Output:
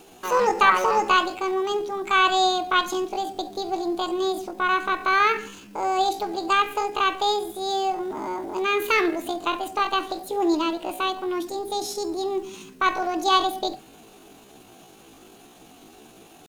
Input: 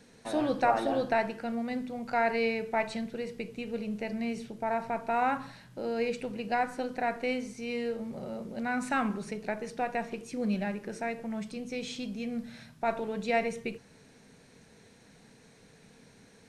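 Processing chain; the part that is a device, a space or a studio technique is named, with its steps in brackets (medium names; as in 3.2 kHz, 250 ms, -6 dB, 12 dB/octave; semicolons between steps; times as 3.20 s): chipmunk voice (pitch shift +8.5 st); trim +8.5 dB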